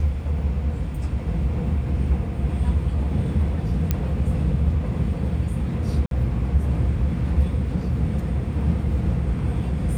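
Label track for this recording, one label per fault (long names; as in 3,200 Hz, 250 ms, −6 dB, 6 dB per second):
3.910000	3.910000	click −8 dBFS
6.060000	6.110000	drop-out 52 ms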